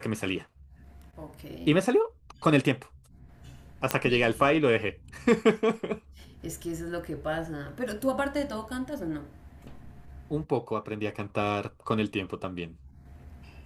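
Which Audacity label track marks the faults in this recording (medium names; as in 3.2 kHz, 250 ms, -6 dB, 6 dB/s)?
3.910000	3.910000	pop -8 dBFS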